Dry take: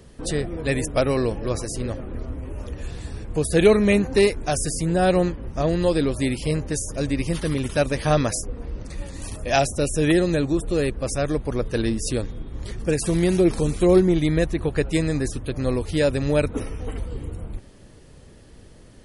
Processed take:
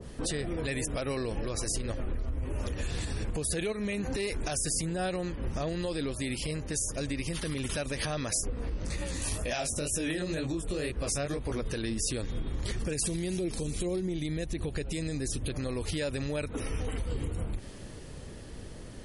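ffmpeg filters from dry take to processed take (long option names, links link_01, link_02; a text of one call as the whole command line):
ffmpeg -i in.wav -filter_complex "[0:a]asettb=1/sr,asplit=3[link_01][link_02][link_03];[link_01]atrim=end=1.174[link_04];[link_02]atrim=start=1.17:end=2.44,asetpts=PTS-STARTPTS,afade=type=in:duration=0.004:curve=qsin,afade=type=out:start_time=1.266:duration=0.004:curve=qsin,asubboost=boost=6:cutoff=83[link_05];[link_03]atrim=start=2.436[link_06];[link_04][link_05]acrossfade=duration=0.004:curve1=hsin:curve2=qsin[link_07];[link_07][link_06]acrossfade=duration=0.004:curve1=qsin:curve2=hsin,asettb=1/sr,asplit=3[link_08][link_09][link_10];[link_08]atrim=end=3.724[link_11];[link_09]atrim=start=3.72:end=4.5,asetpts=PTS-STARTPTS,afade=type=in:duration=0.004:curve=qsin,afade=type=out:start_time=0.776:duration=0.004:curve=qsin,acompressor=threshold=-25dB:ratio=2:attack=3.2:release=140:knee=1:detection=peak[link_12];[link_10]atrim=start=4.496[link_13];[link_11][link_12]acrossfade=duration=0.004:curve1=hsin:curve2=qsin[link_14];[link_14][link_13]acrossfade=duration=0.004:curve1=qsin:curve2=hsin,asplit=3[link_15][link_16][link_17];[link_15]afade=type=out:start_time=8.53:duration=0.02[link_18];[link_16]flanger=delay=16:depth=5.6:speed=2.1,afade=type=in:start_time=8.53:duration=0.02,afade=type=out:start_time=11.6:duration=0.02[link_19];[link_17]afade=type=in:start_time=11.6:duration=0.02[link_20];[link_18][link_19][link_20]amix=inputs=3:normalize=0,asettb=1/sr,asplit=3[link_21][link_22][link_23];[link_21]atrim=end=12.934[link_24];[link_22]atrim=start=12.93:end=15.5,asetpts=PTS-STARTPTS,afade=type=in:duration=0.004:curve=qsin,afade=type=out:start_time=2.566:duration=0.004:curve=qsin,equalizer=frequency=1300:width_type=o:width=1.6:gain=-7.5[link_25];[link_23]atrim=start=15.496[link_26];[link_24][link_25]acrossfade=duration=0.004:curve1=hsin:curve2=qsin[link_27];[link_27][link_26]acrossfade=duration=0.004:curve1=qsin:curve2=hsin,asplit=3[link_28][link_29][link_30];[link_28]atrim=end=6.22,asetpts=PTS-STARTPTS,afade=type=out:start_time=6.02:duration=0.2:curve=qua:silence=0.354813[link_31];[link_29]atrim=start=6.22:end=7.56,asetpts=PTS-STARTPTS,volume=-9dB[link_32];[link_30]atrim=start=7.56,asetpts=PTS-STARTPTS,afade=type=in:duration=0.2:curve=qua:silence=0.354813[link_33];[link_31][link_32][link_33]concat=n=3:v=0:a=1,acompressor=threshold=-29dB:ratio=6,alimiter=level_in=4.5dB:limit=-24dB:level=0:latency=1:release=75,volume=-4.5dB,adynamicequalizer=threshold=0.00224:dfrequency=1500:dqfactor=0.7:tfrequency=1500:tqfactor=0.7:attack=5:release=100:ratio=0.375:range=3:mode=boostabove:tftype=highshelf,volume=3.5dB" out.wav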